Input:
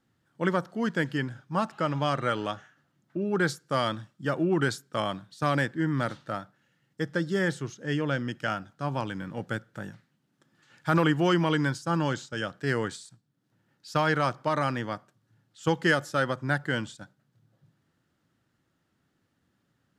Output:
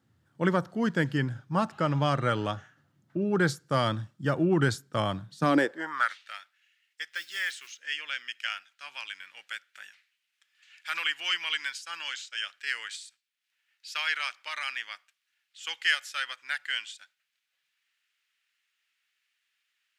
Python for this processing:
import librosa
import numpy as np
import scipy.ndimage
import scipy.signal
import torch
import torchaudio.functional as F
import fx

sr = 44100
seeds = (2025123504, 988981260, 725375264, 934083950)

y = fx.mod_noise(x, sr, seeds[0], snr_db=28, at=(7.11, 7.78), fade=0.02)
y = fx.filter_sweep_highpass(y, sr, from_hz=87.0, to_hz=2400.0, start_s=5.2, end_s=6.18, q=3.1)